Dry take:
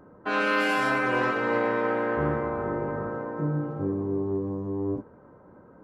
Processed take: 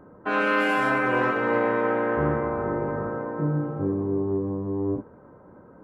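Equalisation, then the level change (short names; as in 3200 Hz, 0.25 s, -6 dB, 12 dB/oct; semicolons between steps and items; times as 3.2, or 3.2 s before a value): bell 4800 Hz -8.5 dB 1.1 oct; high shelf 8500 Hz -6.5 dB; +2.5 dB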